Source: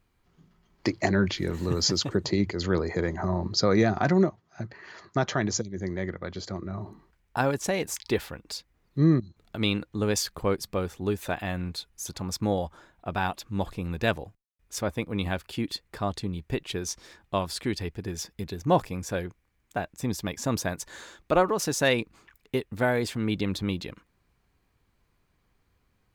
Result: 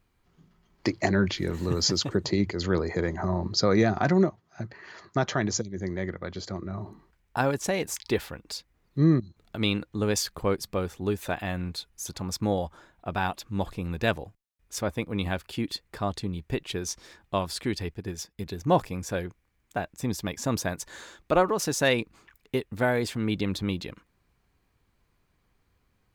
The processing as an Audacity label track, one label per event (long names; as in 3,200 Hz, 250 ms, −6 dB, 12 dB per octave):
17.940000	18.460000	expander for the loud parts, over −48 dBFS